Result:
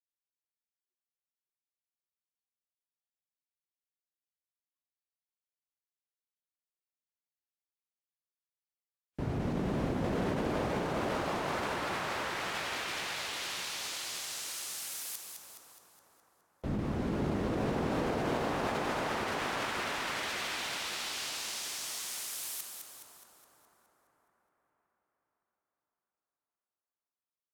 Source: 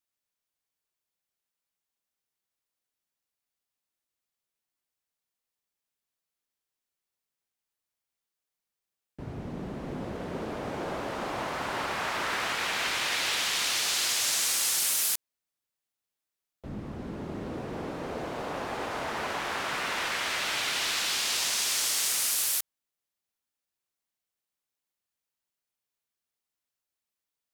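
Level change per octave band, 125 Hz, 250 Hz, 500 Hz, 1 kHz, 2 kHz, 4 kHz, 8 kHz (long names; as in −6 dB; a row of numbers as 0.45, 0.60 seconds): +4.5, +3.5, +1.0, −2.0, −5.5, −8.5, −11.0 decibels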